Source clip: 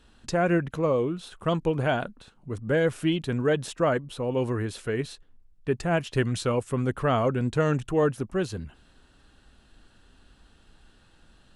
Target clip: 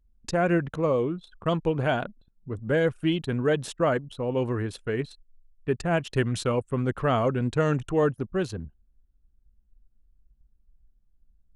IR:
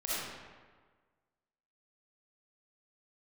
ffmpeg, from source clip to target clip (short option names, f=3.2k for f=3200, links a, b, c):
-af "anlmdn=0.398"